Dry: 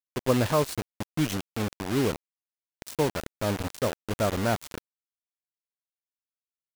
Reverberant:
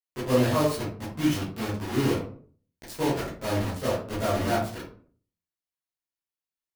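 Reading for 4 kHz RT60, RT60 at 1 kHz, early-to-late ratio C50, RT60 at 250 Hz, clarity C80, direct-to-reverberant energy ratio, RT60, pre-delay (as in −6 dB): 0.30 s, 0.45 s, 4.0 dB, 0.60 s, 9.0 dB, −11.0 dB, 0.50 s, 13 ms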